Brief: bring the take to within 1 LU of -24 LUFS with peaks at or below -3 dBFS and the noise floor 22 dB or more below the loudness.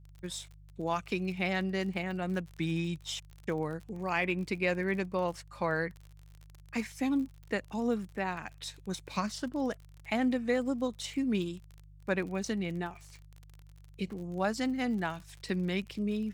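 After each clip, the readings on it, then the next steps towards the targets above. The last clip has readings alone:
tick rate 40 per s; hum 50 Hz; highest harmonic 150 Hz; hum level -51 dBFS; loudness -34.0 LUFS; peak level -16.0 dBFS; loudness target -24.0 LUFS
-> de-click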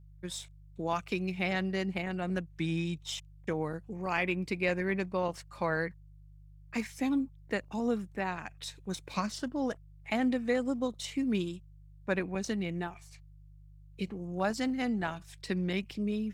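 tick rate 0.37 per s; hum 50 Hz; highest harmonic 150 Hz; hum level -52 dBFS
-> de-hum 50 Hz, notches 3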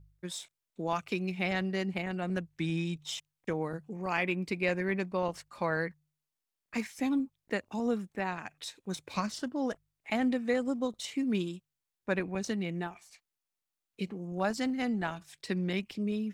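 hum not found; loudness -34.0 LUFS; peak level -16.0 dBFS; loudness target -24.0 LUFS
-> trim +10 dB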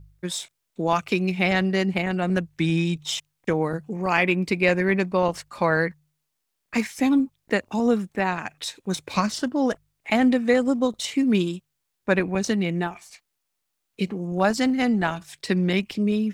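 loudness -24.0 LUFS; peak level -6.0 dBFS; noise floor -78 dBFS

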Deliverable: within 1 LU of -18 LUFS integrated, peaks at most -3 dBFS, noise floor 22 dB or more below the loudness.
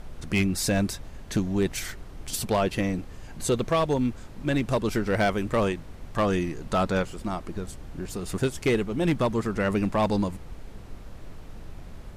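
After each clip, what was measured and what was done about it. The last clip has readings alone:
clipped samples 0.9%; clipping level -17.0 dBFS; noise floor -43 dBFS; noise floor target -49 dBFS; loudness -27.0 LUFS; peak level -17.0 dBFS; loudness target -18.0 LUFS
-> clip repair -17 dBFS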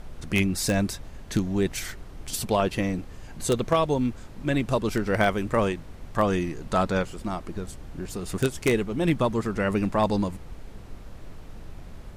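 clipped samples 0.0%; noise floor -43 dBFS; noise floor target -49 dBFS
-> noise print and reduce 6 dB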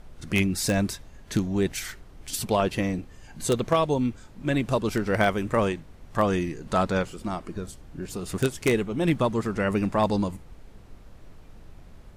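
noise floor -48 dBFS; noise floor target -49 dBFS
-> noise print and reduce 6 dB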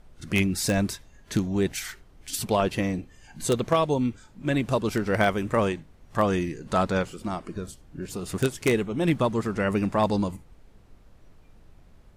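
noise floor -54 dBFS; loudness -26.5 LUFS; peak level -8.0 dBFS; loudness target -18.0 LUFS
-> trim +8.5 dB; peak limiter -3 dBFS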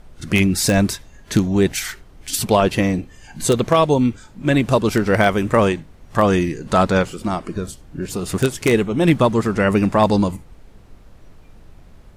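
loudness -18.5 LUFS; peak level -3.0 dBFS; noise floor -46 dBFS

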